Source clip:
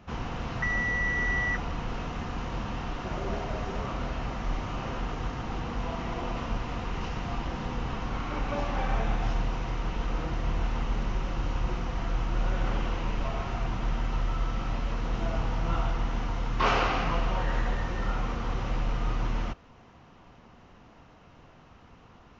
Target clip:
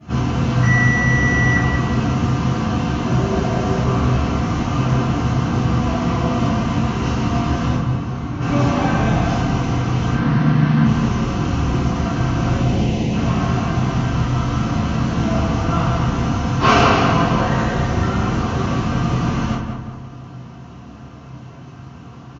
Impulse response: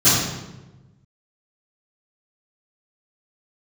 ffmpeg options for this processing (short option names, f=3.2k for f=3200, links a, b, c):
-filter_complex "[0:a]asettb=1/sr,asplit=3[a][b][c];[a]atrim=end=7.734[d];[b]atrim=start=7.73:end=8.4,asetpts=PTS-STARTPTS,afade=t=in:d=0.004:c=qsin,afade=t=out:st=0.666:d=0.004:c=qsin,acrossover=split=190|1000[e][f][g];[e]acompressor=threshold=-37dB:ratio=4[h];[f]acompressor=threshold=-46dB:ratio=4[i];[g]acompressor=threshold=-52dB:ratio=4[j];[h][i][j]amix=inputs=3:normalize=0[k];[c]atrim=start=8.396[l];[d][k]acrossfade=d=0.004:c1=hsin:c2=qsin[m];[m][l]acrossfade=d=0.004:c1=qsin:c2=hsin,asettb=1/sr,asplit=3[n][o][p];[n]atrim=end=10.124[q];[o]atrim=start=10.12:end=10.84,asetpts=PTS-STARTPTS,afade=t=in:d=0.004:c=qsin,afade=t=out:st=0.716:d=0.004:c=qsin,highpass=f=120:w=0.5412,highpass=f=120:w=1.3066,equalizer=f=150:t=q:w=4:g=6,equalizer=f=240:t=q:w=4:g=10,equalizer=f=350:t=q:w=4:g=-4,equalizer=f=600:t=q:w=4:g=-4,equalizer=f=1.7k:t=q:w=4:g=7,equalizer=f=2.8k:t=q:w=4:g=-3,lowpass=f=4.8k:w=0.5412,lowpass=f=4.8k:w=1.3066[r];[p]atrim=start=10.836[s];[q][r]acrossfade=d=0.004:c1=hsin:c2=qsin[t];[t][s]acrossfade=d=0.004:c1=qsin:c2=hsin,asettb=1/sr,asplit=3[u][v][w];[u]atrim=end=12.554[x];[v]atrim=start=12.55:end=13.12,asetpts=PTS-STARTPTS,afade=t=in:d=0.004:c=qsin,afade=t=out:st=0.566:d=0.004:c=qsin,asuperstop=centerf=1300:order=4:qfactor=1[y];[w]atrim=start=13.116[z];[x][y]acrossfade=d=0.004:c1=hsin:c2=qsin[aa];[aa][z]acrossfade=d=0.004:c1=qsin:c2=hsin,asplit=2[ab][ac];[ac]adelay=186,lowpass=f=2.1k:p=1,volume=-5dB,asplit=2[ad][ae];[ae]adelay=186,lowpass=f=2.1k:p=1,volume=0.49,asplit=2[af][ag];[ag]adelay=186,lowpass=f=2.1k:p=1,volume=0.49,asplit=2[ah][ai];[ai]adelay=186,lowpass=f=2.1k:p=1,volume=0.49,asplit=2[aj][ak];[ak]adelay=186,lowpass=f=2.1k:p=1,volume=0.49,asplit=2[al][am];[am]adelay=186,lowpass=f=2.1k:p=1,volume=0.49[an];[ab][ad][af][ah][aj][al][an]amix=inputs=7:normalize=0[ao];[1:a]atrim=start_sample=2205,atrim=end_sample=3969[ap];[ao][ap]afir=irnorm=-1:irlink=0,volume=-9.5dB"